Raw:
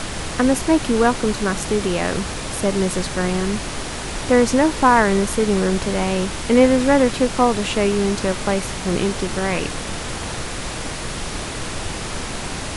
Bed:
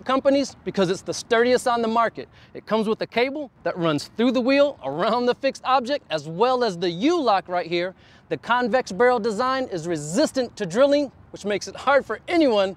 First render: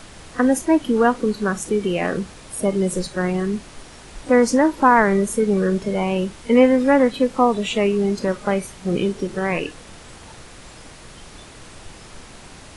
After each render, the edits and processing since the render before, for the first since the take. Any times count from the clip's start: noise print and reduce 14 dB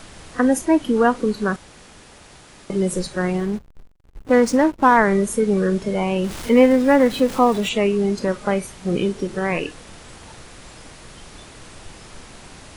1.56–2.7 room tone; 3.38–4.97 backlash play -26.5 dBFS; 6.24–7.69 zero-crossing step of -29 dBFS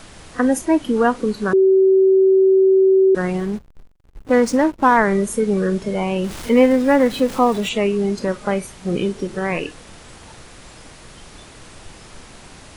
1.53–3.15 bleep 382 Hz -9.5 dBFS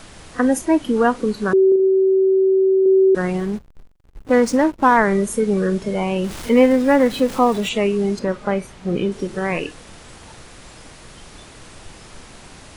1.68–2.86 flutter echo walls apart 6.6 m, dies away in 0.49 s; 8.19–9.12 LPF 3300 Hz 6 dB/oct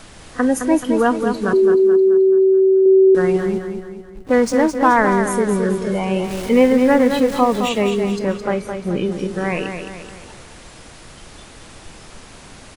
feedback echo 0.215 s, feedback 47%, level -7 dB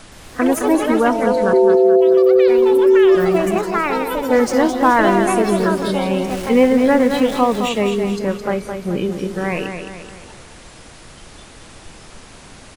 echoes that change speed 0.12 s, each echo +5 st, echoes 3, each echo -6 dB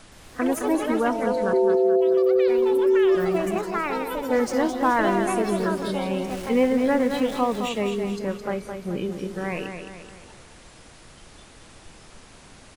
gain -7.5 dB

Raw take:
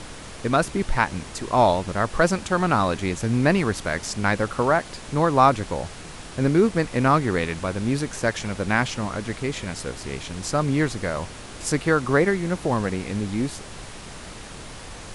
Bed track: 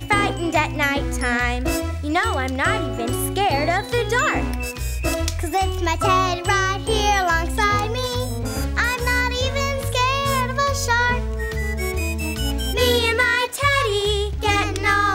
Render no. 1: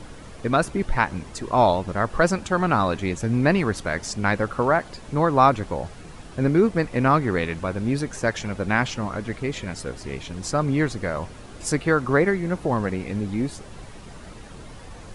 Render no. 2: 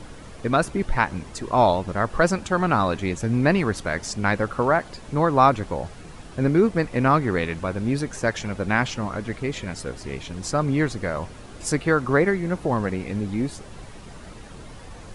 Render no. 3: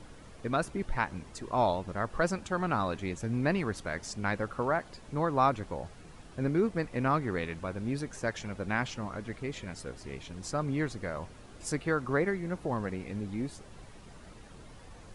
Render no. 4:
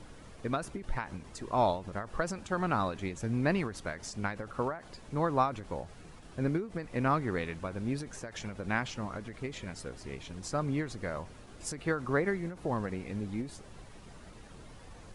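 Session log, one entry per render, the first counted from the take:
denoiser 9 dB, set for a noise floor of -39 dBFS
nothing audible
gain -9.5 dB
ending taper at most 140 dB/s

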